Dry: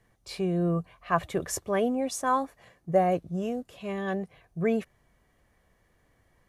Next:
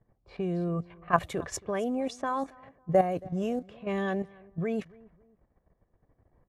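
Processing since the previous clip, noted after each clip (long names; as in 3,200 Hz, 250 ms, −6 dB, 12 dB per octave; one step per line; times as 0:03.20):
output level in coarse steps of 11 dB
repeating echo 275 ms, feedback 35%, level −23.5 dB
low-pass that shuts in the quiet parts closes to 810 Hz, open at −28.5 dBFS
level +3.5 dB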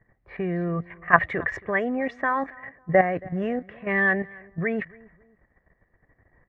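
low-pass with resonance 1,900 Hz, resonance Q 12
level +3 dB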